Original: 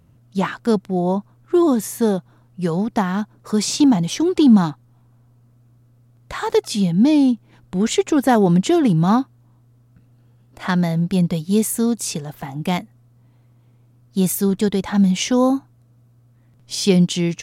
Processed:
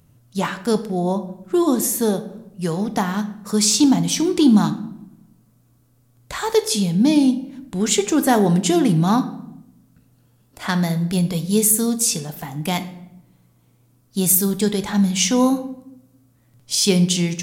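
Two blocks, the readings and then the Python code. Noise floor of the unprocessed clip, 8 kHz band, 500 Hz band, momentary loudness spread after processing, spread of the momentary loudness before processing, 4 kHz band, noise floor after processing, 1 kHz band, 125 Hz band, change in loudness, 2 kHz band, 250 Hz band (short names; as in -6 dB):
-54 dBFS, +7.5 dB, -1.5 dB, 13 LU, 11 LU, +3.5 dB, -58 dBFS, -1.0 dB, -1.5 dB, 0.0 dB, +0.5 dB, -1.5 dB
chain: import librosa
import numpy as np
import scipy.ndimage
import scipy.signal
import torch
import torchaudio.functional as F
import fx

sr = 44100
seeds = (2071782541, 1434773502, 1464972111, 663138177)

y = fx.high_shelf(x, sr, hz=4500.0, db=12.0)
y = fx.room_shoebox(y, sr, seeds[0], volume_m3=220.0, walls='mixed', distance_m=0.36)
y = F.gain(torch.from_numpy(y), -2.0).numpy()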